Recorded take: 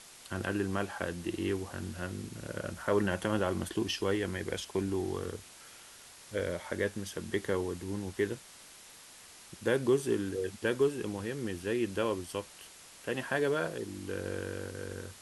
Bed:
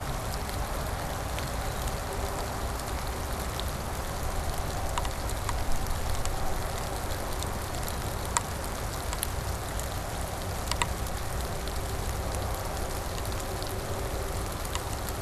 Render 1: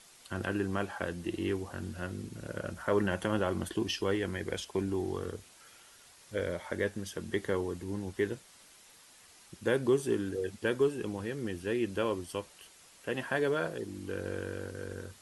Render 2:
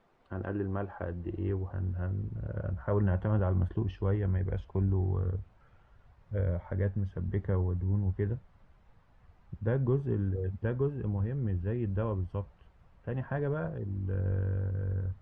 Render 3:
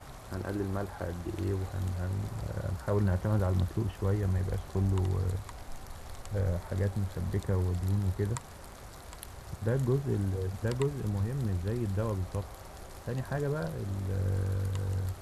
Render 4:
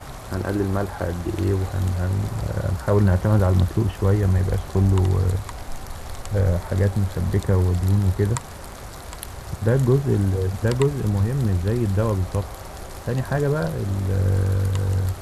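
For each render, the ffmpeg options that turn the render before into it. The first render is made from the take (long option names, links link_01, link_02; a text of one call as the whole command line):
ffmpeg -i in.wav -af "afftdn=noise_reduction=6:noise_floor=-53" out.wav
ffmpeg -i in.wav -af "lowpass=1000,asubboost=boost=11.5:cutoff=96" out.wav
ffmpeg -i in.wav -i bed.wav -filter_complex "[1:a]volume=-14dB[link_01];[0:a][link_01]amix=inputs=2:normalize=0" out.wav
ffmpeg -i in.wav -af "volume=10.5dB" out.wav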